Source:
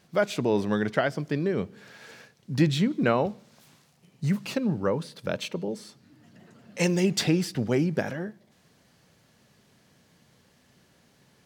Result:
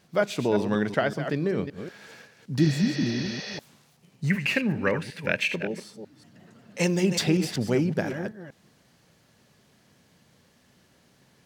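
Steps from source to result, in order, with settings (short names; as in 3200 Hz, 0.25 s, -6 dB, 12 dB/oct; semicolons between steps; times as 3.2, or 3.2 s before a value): reverse delay 0.189 s, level -9 dB; 2.63–3.56 spectral repair 370–6500 Hz before; 4.3–5.8 band shelf 2100 Hz +14.5 dB 1 oct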